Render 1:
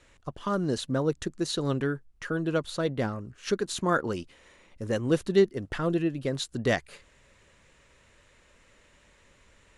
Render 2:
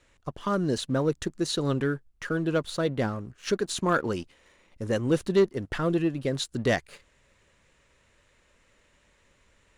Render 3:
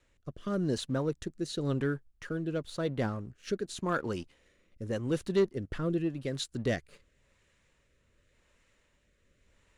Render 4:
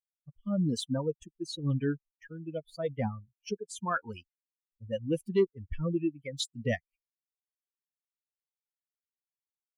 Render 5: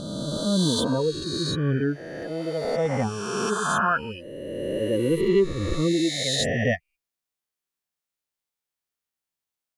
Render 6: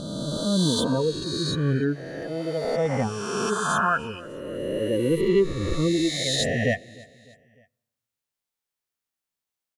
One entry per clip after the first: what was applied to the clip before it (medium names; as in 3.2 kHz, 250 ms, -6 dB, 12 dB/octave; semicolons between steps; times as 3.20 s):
waveshaping leveller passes 1; trim -2 dB
bass shelf 180 Hz +3 dB; rotary cabinet horn 0.9 Hz; trim -4.5 dB
expander on every frequency bin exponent 3; in parallel at +2.5 dB: peak limiter -29.5 dBFS, peak gain reduction 12 dB
reverse spectral sustain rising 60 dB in 2.30 s; trim +4 dB
feedback delay 302 ms, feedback 51%, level -23 dB; on a send at -21 dB: reverberation RT60 0.90 s, pre-delay 4 ms